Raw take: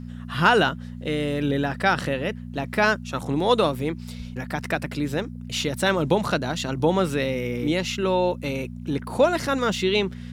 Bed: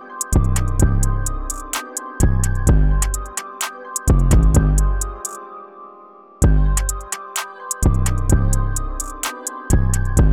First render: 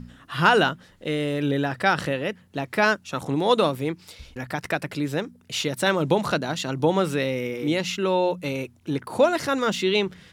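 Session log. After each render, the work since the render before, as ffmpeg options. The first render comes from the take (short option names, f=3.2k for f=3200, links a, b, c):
-af "bandreject=f=60:t=h:w=4,bandreject=f=120:t=h:w=4,bandreject=f=180:t=h:w=4,bandreject=f=240:t=h:w=4"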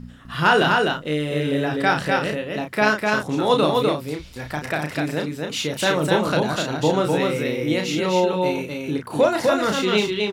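-filter_complex "[0:a]asplit=2[a][b];[b]adelay=33,volume=-5dB[c];[a][c]amix=inputs=2:normalize=0,aecho=1:1:252:0.708"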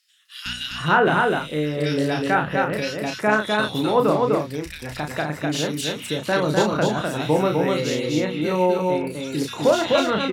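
-filter_complex "[0:a]acrossover=split=2400[a][b];[a]adelay=460[c];[c][b]amix=inputs=2:normalize=0"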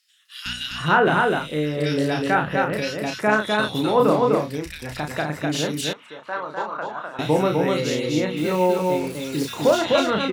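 -filter_complex "[0:a]asettb=1/sr,asplit=3[a][b][c];[a]atrim=end=3.974[d];[b]atrim=start=3.97:end=4.58,asetpts=PTS-STARTPTS,afade=t=in:d=0.004:c=qsin,afade=t=out:st=0.606:d=0.004:c=qsin,asplit=2[e][f];[f]adelay=29,volume=-7.5dB[g];[e][g]amix=inputs=2:normalize=0,atrim=end_sample=26901[h];[c]atrim=start=4.576[i];[d][h]acrossfade=d=0.004:c1=hsin:c2=qsin[j];[j][i]acrossfade=d=0.004:c1=qsin:c2=hsin,asettb=1/sr,asplit=3[k][l][m];[k]atrim=end=5.934[n];[l]atrim=start=5.93:end=7.19,asetpts=PTS-STARTPTS,afade=t=in:d=0.004:c=qsin,afade=t=out:st=1.256:d=0.004:c=qsin,bandpass=f=1.1k:t=q:w=2.1[o];[m]atrim=start=7.186[p];[n][o]acrossfade=d=0.004:c1=hsin:c2=qsin[q];[q][p]acrossfade=d=0.004:c1=qsin:c2=hsin,asplit=3[r][s][t];[r]afade=t=out:st=8.36:d=0.02[u];[s]acrusher=bits=5:mix=0:aa=0.5,afade=t=in:st=8.36:d=0.02,afade=t=out:st=9.77:d=0.02[v];[t]afade=t=in:st=9.77:d=0.02[w];[u][v][w]amix=inputs=3:normalize=0"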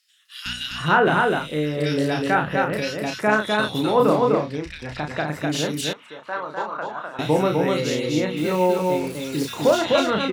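-filter_complex "[0:a]asettb=1/sr,asplit=3[a][b][c];[a]atrim=end=4.324[d];[b]atrim=start=4.32:end=5.28,asetpts=PTS-STARTPTS,afade=t=in:d=0.004:c=qsin,afade=t=out:st=0.956:d=0.004:c=qsin,lowpass=4.9k[e];[c]atrim=start=5.276[f];[d][e]acrossfade=d=0.004:c1=hsin:c2=qsin[g];[g][f]acrossfade=d=0.004:c1=qsin:c2=hsin"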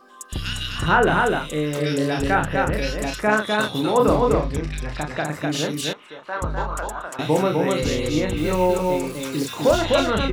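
-filter_complex "[1:a]volume=-14dB[a];[0:a][a]amix=inputs=2:normalize=0"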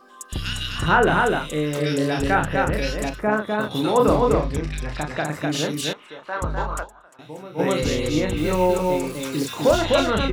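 -filter_complex "[0:a]asettb=1/sr,asplit=3[a][b][c];[a]atrim=end=3.094[d];[b]atrim=start=3.09:end=3.71,asetpts=PTS-STARTPTS,afade=t=in:d=0.004:c=qsin,afade=t=out:st=0.616:d=0.004:c=qsin,equalizer=f=6.5k:w=0.34:g=-15[e];[c]atrim=start=3.706[f];[d][e]acrossfade=d=0.004:c1=hsin:c2=qsin[g];[g][f]acrossfade=d=0.004:c1=qsin:c2=hsin,asplit=3[h][i][j];[h]atrim=end=7.01,asetpts=PTS-STARTPTS,afade=t=out:st=6.82:d=0.19:c=exp:silence=0.125893[k];[i]atrim=start=7.01:end=7.41,asetpts=PTS-STARTPTS,volume=-18dB[l];[j]atrim=start=7.41,asetpts=PTS-STARTPTS,afade=t=in:d=0.19:c=exp:silence=0.125893[m];[k][l][m]concat=n=3:v=0:a=1"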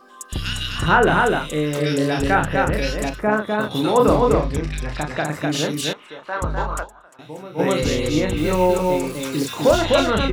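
-af "volume=2dB,alimiter=limit=-3dB:level=0:latency=1"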